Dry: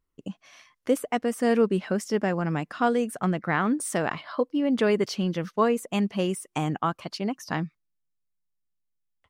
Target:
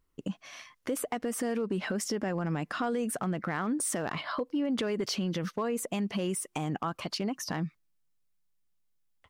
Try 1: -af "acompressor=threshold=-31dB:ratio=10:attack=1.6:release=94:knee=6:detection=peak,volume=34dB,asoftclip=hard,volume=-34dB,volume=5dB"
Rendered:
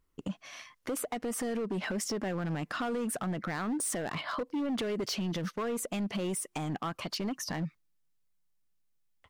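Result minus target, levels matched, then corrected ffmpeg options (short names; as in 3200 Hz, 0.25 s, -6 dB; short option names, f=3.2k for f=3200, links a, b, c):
overloaded stage: distortion +16 dB
-af "acompressor=threshold=-31dB:ratio=10:attack=1.6:release=94:knee=6:detection=peak,volume=28dB,asoftclip=hard,volume=-28dB,volume=5dB"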